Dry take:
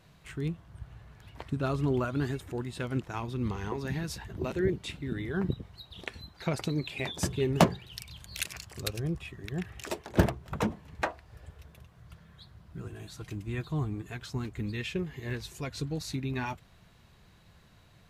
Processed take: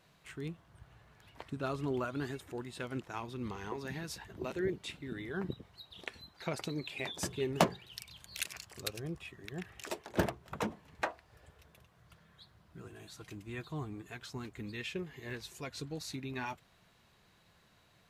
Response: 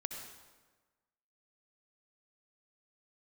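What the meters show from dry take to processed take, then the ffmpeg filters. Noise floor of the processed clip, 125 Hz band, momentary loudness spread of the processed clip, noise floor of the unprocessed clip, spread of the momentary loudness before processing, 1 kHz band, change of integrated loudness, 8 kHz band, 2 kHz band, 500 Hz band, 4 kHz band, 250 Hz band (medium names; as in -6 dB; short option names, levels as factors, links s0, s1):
-67 dBFS, -10.5 dB, 15 LU, -59 dBFS, 17 LU, -4.0 dB, -6.0 dB, -3.5 dB, -3.5 dB, -5.0 dB, -3.5 dB, -7.5 dB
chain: -af "lowshelf=f=160:g=-12,volume=0.668"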